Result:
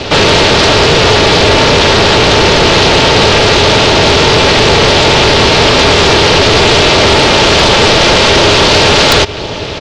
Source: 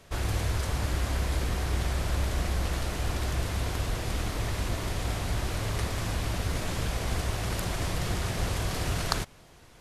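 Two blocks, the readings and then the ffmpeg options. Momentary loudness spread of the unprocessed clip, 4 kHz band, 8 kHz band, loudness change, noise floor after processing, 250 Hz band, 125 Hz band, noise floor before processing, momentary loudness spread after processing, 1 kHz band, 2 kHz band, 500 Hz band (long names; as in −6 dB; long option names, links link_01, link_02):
2 LU, +31.5 dB, +22.0 dB, +25.0 dB, −18 dBFS, +24.5 dB, +16.0 dB, −53 dBFS, 1 LU, +28.0 dB, +28.0 dB, +30.0 dB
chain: -filter_complex "[0:a]aecho=1:1:4:0.34,asplit=2[link_01][link_02];[link_02]acompressor=threshold=-36dB:ratio=6,volume=0dB[link_03];[link_01][link_03]amix=inputs=2:normalize=0,highpass=frequency=220:width=0.5412,highpass=frequency=220:width=1.3066,equalizer=frequency=250:width_type=q:width=4:gain=4,equalizer=frequency=570:width_type=q:width=4:gain=-6,equalizer=frequency=910:width_type=q:width=4:gain=-9,equalizer=frequency=1400:width_type=q:width=4:gain=-9,equalizer=frequency=2000:width_type=q:width=4:gain=-8,lowpass=frequency=4700:width=0.5412,lowpass=frequency=4700:width=1.3066,acontrast=58,aeval=exprs='val(0)*sin(2*PI*160*n/s)':channel_layout=same,apsyclip=33dB,volume=-1.5dB"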